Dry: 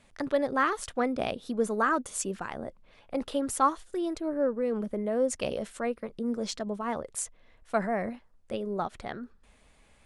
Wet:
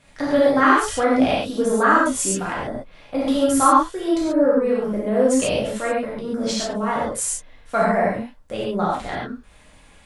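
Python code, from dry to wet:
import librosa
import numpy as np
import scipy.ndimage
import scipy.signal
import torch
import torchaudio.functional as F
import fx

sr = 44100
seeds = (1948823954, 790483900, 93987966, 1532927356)

y = fx.rev_gated(x, sr, seeds[0], gate_ms=160, shape='flat', drr_db=-7.0)
y = y * librosa.db_to_amplitude(3.5)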